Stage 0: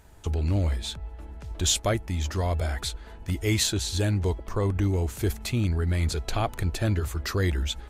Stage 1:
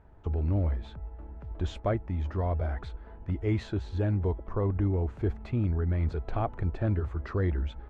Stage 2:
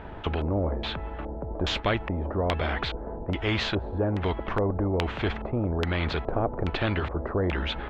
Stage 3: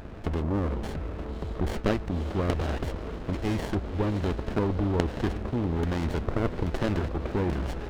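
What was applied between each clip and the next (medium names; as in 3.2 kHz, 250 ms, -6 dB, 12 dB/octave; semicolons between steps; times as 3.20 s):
low-pass 1.3 kHz 12 dB/octave; trim -2.5 dB
LFO low-pass square 1.2 Hz 540–3300 Hz; spectrum-flattening compressor 2:1; trim +7.5 dB
echo that smears into a reverb 575 ms, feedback 48%, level -13 dB; sliding maximum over 33 samples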